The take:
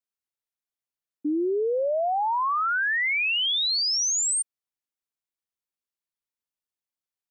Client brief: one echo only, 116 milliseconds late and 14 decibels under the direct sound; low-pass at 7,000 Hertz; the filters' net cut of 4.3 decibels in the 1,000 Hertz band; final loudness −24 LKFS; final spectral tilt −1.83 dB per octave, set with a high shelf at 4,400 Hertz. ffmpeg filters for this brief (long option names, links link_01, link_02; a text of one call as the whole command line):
ffmpeg -i in.wav -af "lowpass=7000,equalizer=frequency=1000:width_type=o:gain=-6,highshelf=frequency=4400:gain=5.5,aecho=1:1:116:0.2,volume=-1dB" out.wav